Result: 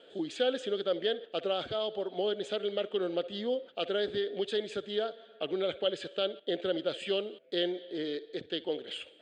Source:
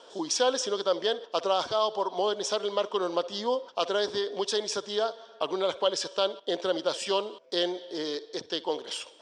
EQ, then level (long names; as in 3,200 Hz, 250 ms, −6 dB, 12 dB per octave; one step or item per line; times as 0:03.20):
high-frequency loss of the air 83 metres
low-shelf EQ 120 Hz +5.5 dB
phaser with its sweep stopped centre 2,400 Hz, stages 4
0.0 dB